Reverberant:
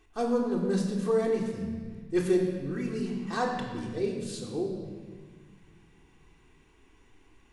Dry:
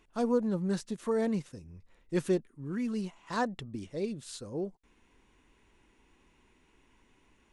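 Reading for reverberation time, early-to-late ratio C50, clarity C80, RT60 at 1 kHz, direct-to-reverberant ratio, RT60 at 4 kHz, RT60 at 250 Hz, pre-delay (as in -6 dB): 1.5 s, 4.0 dB, 5.0 dB, 1.4 s, -2.5 dB, 1.4 s, 2.6 s, 3 ms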